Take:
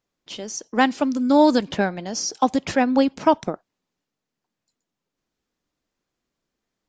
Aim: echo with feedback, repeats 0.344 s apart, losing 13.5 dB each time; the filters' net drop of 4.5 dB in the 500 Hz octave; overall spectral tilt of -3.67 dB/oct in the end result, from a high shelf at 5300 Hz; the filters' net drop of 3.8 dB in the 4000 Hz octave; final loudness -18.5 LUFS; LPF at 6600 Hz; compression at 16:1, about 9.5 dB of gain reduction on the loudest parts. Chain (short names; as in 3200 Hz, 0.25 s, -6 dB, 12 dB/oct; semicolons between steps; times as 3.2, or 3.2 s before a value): LPF 6600 Hz; bell 500 Hz -5.5 dB; bell 4000 Hz -8.5 dB; high shelf 5300 Hz +7.5 dB; compressor 16:1, threshold -23 dBFS; feedback echo 0.344 s, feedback 21%, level -13.5 dB; gain +10.5 dB